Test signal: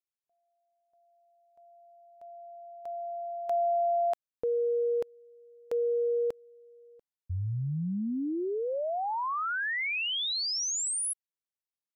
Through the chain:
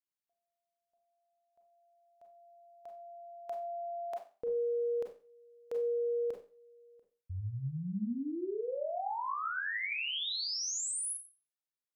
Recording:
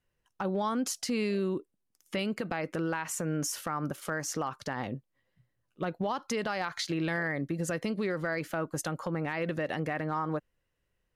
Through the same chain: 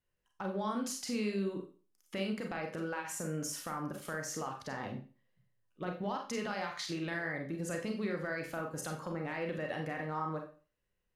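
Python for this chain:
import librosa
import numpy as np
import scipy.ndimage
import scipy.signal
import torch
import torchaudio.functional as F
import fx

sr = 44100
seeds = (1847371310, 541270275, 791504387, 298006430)

y = fx.rev_schroeder(x, sr, rt60_s=0.36, comb_ms=30, drr_db=2.0)
y = y * 10.0 ** (-7.0 / 20.0)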